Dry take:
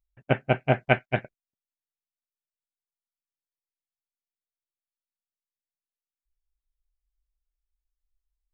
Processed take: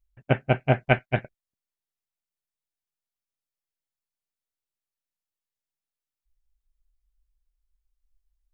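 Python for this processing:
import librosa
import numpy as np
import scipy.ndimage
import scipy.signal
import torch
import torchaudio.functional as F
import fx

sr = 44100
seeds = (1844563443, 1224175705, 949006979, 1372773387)

y = fx.low_shelf(x, sr, hz=83.0, db=10.0)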